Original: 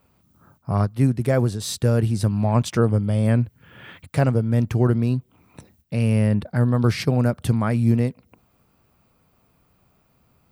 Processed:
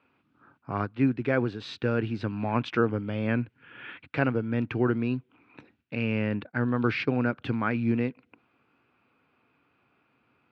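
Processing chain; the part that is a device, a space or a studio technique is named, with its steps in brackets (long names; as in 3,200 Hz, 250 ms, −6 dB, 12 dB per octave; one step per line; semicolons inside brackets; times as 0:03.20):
0:05.95–0:07.21: downward expander −24 dBFS
kitchen radio (loudspeaker in its box 180–3,600 Hz, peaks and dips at 180 Hz −9 dB, 290 Hz +5 dB, 620 Hz −6 dB, 1,500 Hz +7 dB, 2,500 Hz +8 dB)
level −3.5 dB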